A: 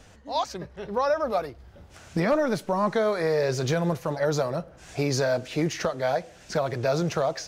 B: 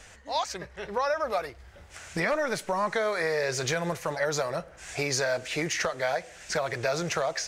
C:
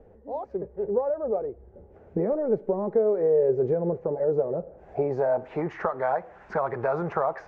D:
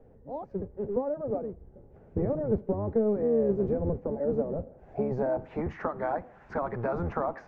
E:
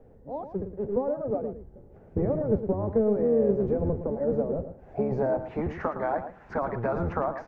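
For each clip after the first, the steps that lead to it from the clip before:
graphic EQ 125/250/2000/8000 Hz -5/-7/+8/+8 dB; compressor 2:1, threshold -26 dBFS, peak gain reduction 5 dB
low-pass sweep 470 Hz -> 1100 Hz, 4.53–5.75; dynamic EQ 4300 Hz, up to -4 dB, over -46 dBFS, Q 0.75; small resonant body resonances 220/390/820 Hz, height 7 dB, ringing for 35 ms; gain -1.5 dB
octaver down 1 oct, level +3 dB; gain -5 dB
echo 0.113 s -10.5 dB; gain +2 dB

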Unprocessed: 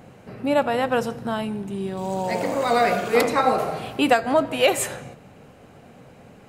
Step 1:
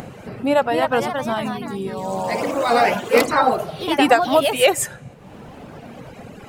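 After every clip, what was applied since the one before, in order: reverb removal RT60 1.6 s; echoes that change speed 0.323 s, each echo +2 st, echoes 3, each echo -6 dB; upward compressor, threshold -31 dBFS; gain +3.5 dB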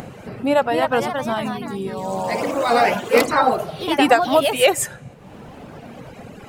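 nothing audible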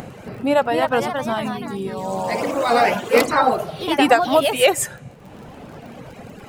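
crackle 27/s -35 dBFS

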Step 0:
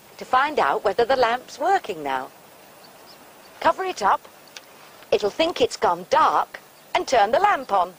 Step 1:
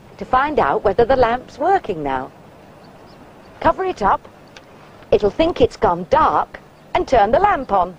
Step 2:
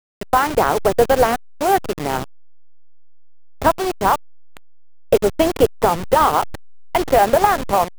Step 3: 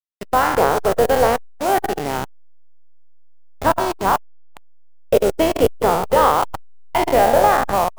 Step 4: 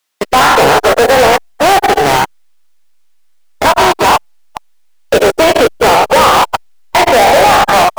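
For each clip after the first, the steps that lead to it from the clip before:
RIAA curve playback; gain +3 dB
level-crossing sampler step -19.5 dBFS
spectral trails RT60 0.97 s; gain -3.5 dB
overdrive pedal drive 37 dB, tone 6100 Hz, clips at -1 dBFS

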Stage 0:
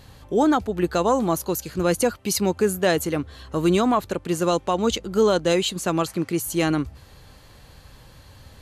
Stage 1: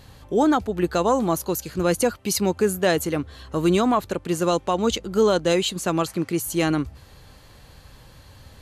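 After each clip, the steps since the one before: nothing audible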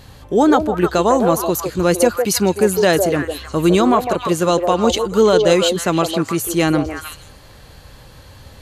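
delay with a stepping band-pass 0.155 s, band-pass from 540 Hz, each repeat 1.4 oct, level -2.5 dB; gain +5.5 dB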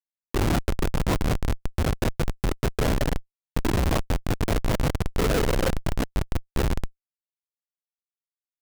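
LPC vocoder at 8 kHz whisper; split-band echo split 450 Hz, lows 90 ms, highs 0.245 s, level -14 dB; Schmitt trigger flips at -11.5 dBFS; gain -4.5 dB

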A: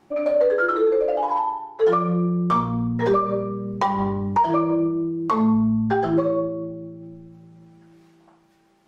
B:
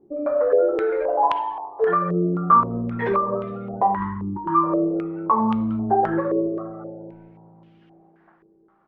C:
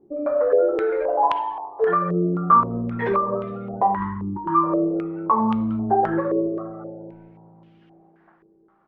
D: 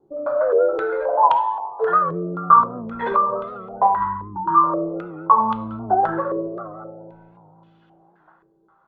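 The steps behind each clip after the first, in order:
frequency-shifting echo 0.205 s, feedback 49%, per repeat +100 Hz, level -17 dB; spectral gain 3.97–4.64, 370–820 Hz -26 dB; stepped low-pass 3.8 Hz 410–3000 Hz; gain -4 dB
nothing audible
resonator 330 Hz, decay 0.5 s, harmonics all, mix 40%; reverb RT60 0.40 s, pre-delay 3 ms, DRR 12 dB; record warp 78 rpm, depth 100 cents; gain -2 dB

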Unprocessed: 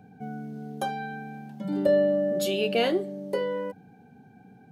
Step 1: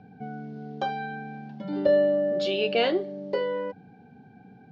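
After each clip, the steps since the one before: steep low-pass 5200 Hz 36 dB/oct; dynamic EQ 200 Hz, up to -6 dB, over -40 dBFS, Q 1.4; gain +1.5 dB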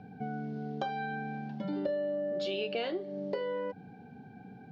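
compressor 5:1, threshold -33 dBFS, peak gain reduction 14.5 dB; gain +1 dB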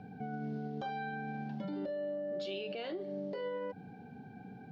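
limiter -32 dBFS, peak gain reduction 10 dB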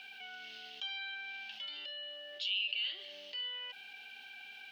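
resonant high-pass 2900 Hz, resonance Q 6.5; fast leveller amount 50%; gain -2.5 dB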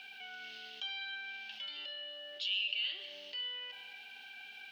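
reverb RT60 1.7 s, pre-delay 83 ms, DRR 11.5 dB

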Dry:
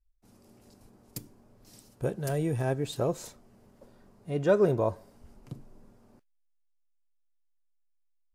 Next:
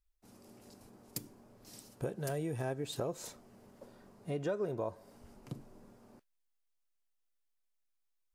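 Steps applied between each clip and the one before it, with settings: low shelf 100 Hz -10.5 dB; compressor 4:1, threshold -37 dBFS, peak gain reduction 16 dB; gain +2 dB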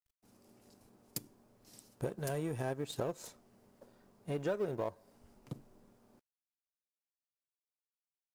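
G.711 law mismatch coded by A; gain +2 dB

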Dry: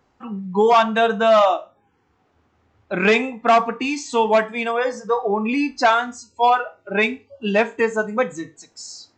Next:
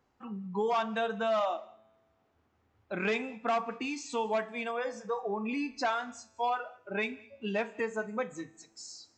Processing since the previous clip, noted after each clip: compressor 1.5:1, threshold -25 dBFS, peak gain reduction 5.5 dB; resonator 110 Hz, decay 1.6 s, mix 30%; on a send at -22.5 dB: reverb, pre-delay 3 ms; on the sum: gain -7 dB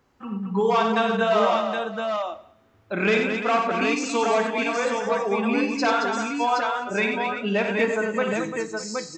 bell 750 Hz -4 dB 0.49 oct; on a send: tapped delay 55/92/222/343/610/770 ms -8.5/-6.5/-6.5/-10.5/-18/-4.5 dB; on the sum: gain +8.5 dB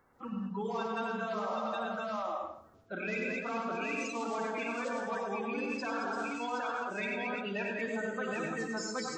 bin magnitudes rounded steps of 30 dB; plate-style reverb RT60 0.56 s, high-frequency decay 0.5×, pre-delay 85 ms, DRR 5 dB; reverse; compressor 6:1, threshold -30 dBFS, peak gain reduction 14 dB; reverse; gain -3 dB

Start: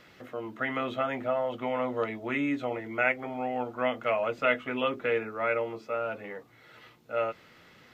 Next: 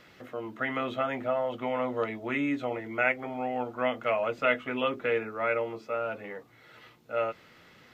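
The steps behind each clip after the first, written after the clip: nothing audible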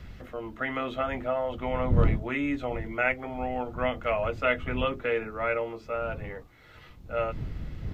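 wind noise 98 Hz -34 dBFS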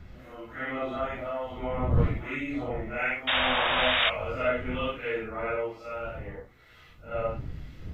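phase scrambler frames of 0.2 s; painted sound noise, 3.27–4.1, 520–3800 Hz -23 dBFS; harmonic tremolo 1.1 Hz, depth 50%, crossover 1400 Hz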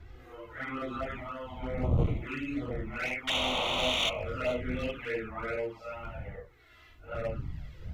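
one-sided clip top -26.5 dBFS; envelope flanger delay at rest 3.4 ms, full sweep at -25.5 dBFS

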